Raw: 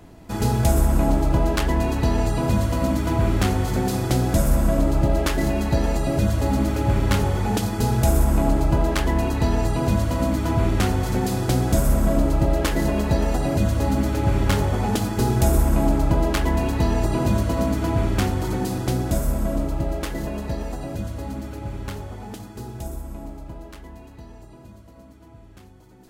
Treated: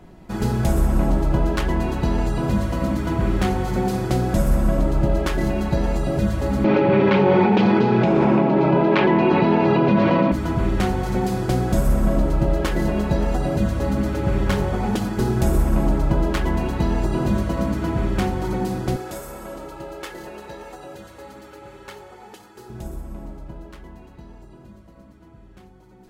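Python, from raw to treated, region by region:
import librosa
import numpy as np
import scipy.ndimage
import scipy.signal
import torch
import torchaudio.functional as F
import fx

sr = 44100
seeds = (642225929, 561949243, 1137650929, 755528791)

y = fx.chain(x, sr, fx.cabinet(low_hz=140.0, low_slope=24, high_hz=4000.0, hz=(180.0, 380.0, 570.0, 910.0, 2400.0), db=(4, 8, 4, 6, 8)),
    fx.env_flatten(amount_pct=100), at=(6.64, 10.32))
y = fx.chain(y, sr, fx.highpass(hz=730.0, slope=6),
    fx.comb(ms=2.3, depth=0.45), at=(18.96, 22.7))
y = fx.high_shelf(y, sr, hz=4100.0, db=-8.5)
y = y + 0.43 * np.pad(y, (int(5.4 * sr / 1000.0), 0))[:len(y)]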